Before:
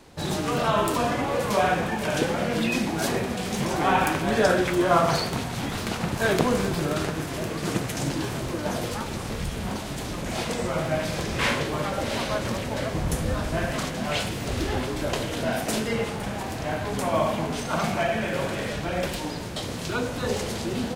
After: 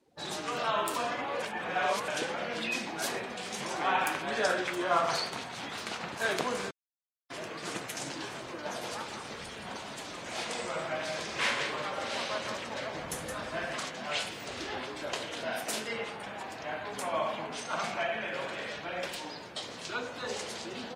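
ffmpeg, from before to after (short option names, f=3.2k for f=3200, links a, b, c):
-filter_complex "[0:a]asettb=1/sr,asplit=3[a][b][c];[a]atrim=end=8.674[d];[b]atrim=start=8.67:end=13.76,asetpts=PTS-STARTPTS,afade=t=in:d=0.004:c=qsin,afade=t=out:st=5.086:d=0.004:c=qsin,aecho=1:1:169:0.473,atrim=end_sample=224469[e];[c]atrim=start=13.756[f];[d][e]acrossfade=d=0.004:c1=hsin:c2=qsin[g];[g][f]acrossfade=d=0.004:c1=qsin:c2=hsin,asplit=5[h][i][j][k][l];[h]atrim=end=1.422[m];[i]atrim=start=1.418:end=2.082,asetpts=PTS-STARTPTS,areverse[n];[j]atrim=start=2.078:end=6.71,asetpts=PTS-STARTPTS,afade=t=out:st=4.628:d=0.004:c=hsin[o];[k]atrim=start=6.71:end=7.3,asetpts=PTS-STARTPTS,volume=0[p];[l]atrim=start=7.3,asetpts=PTS-STARTPTS,afade=t=in:d=0.004:c=hsin[q];[m][n]acrossfade=d=0.004:c1=hsin:c2=hsin[r];[o][p][q]concat=n=3:v=0:a=1[s];[r][s]acrossfade=d=0.004:c1=hsin:c2=hsin,afftdn=nr=19:nf=-44,highpass=f=890:p=1,volume=-3.5dB"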